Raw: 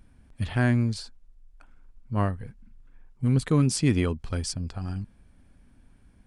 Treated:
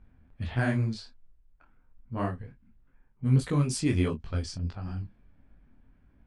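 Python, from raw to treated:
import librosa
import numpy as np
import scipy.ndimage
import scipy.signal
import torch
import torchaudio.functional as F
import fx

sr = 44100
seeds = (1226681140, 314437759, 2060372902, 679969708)

y = fx.doubler(x, sr, ms=23.0, db=-10.5)
y = fx.env_lowpass(y, sr, base_hz=2200.0, full_db=-17.5)
y = fx.detune_double(y, sr, cents=50)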